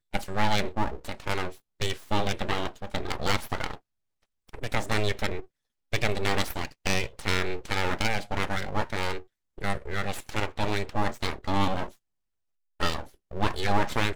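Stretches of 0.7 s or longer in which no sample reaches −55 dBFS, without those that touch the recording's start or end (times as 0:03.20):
0:11.97–0:12.80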